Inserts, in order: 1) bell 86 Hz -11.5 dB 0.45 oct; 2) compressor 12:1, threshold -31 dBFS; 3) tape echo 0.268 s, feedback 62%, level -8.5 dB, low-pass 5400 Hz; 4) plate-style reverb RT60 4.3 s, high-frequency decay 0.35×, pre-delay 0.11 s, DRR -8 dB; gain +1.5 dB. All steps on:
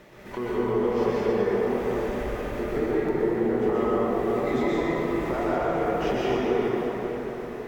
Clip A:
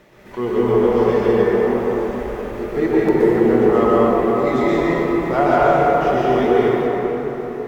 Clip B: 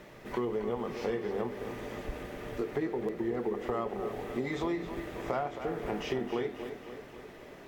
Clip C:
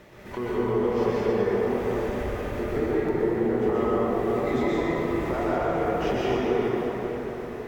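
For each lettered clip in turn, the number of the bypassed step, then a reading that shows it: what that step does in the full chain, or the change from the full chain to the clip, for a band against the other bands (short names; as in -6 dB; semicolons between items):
2, mean gain reduction 4.5 dB; 4, momentary loudness spread change +2 LU; 1, 125 Hz band +2.0 dB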